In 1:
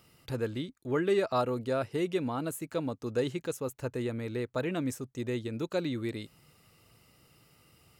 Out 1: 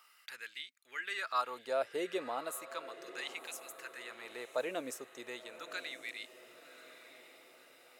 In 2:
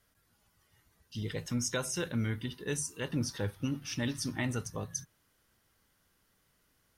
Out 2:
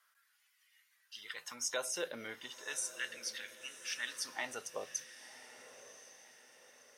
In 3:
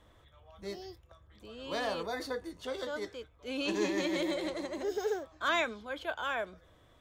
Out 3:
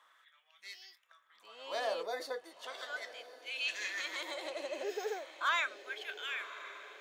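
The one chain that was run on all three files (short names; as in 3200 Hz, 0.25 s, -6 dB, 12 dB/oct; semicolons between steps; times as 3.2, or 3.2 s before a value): dynamic EQ 860 Hz, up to -6 dB, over -46 dBFS, Q 0.94; LFO high-pass sine 0.36 Hz 570–2200 Hz; diffused feedback echo 1.071 s, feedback 47%, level -13.5 dB; gain -2 dB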